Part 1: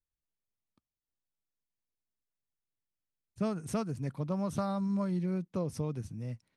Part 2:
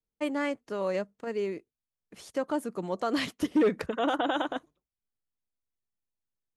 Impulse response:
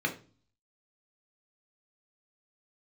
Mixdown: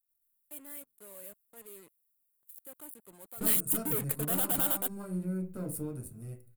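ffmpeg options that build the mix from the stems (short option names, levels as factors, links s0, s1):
-filter_complex "[0:a]aeval=exprs='if(lt(val(0),0),0.251*val(0),val(0))':c=same,bandreject=f=6400:w=15,volume=0.501,asplit=3[s0][s1][s2];[s1]volume=0.473[s3];[1:a]equalizer=f=3800:t=o:w=1.6:g=5,acrusher=bits=5:mix=0:aa=0.5,asoftclip=type=tanh:threshold=0.0376,adelay=300,volume=0.501[s4];[s2]apad=whole_len=302760[s5];[s4][s5]sidechaingate=range=0.2:threshold=0.00251:ratio=16:detection=peak[s6];[2:a]atrim=start_sample=2205[s7];[s3][s7]afir=irnorm=-1:irlink=0[s8];[s0][s6][s8]amix=inputs=3:normalize=0,aexciter=amount=12.7:drive=9.4:freq=8500"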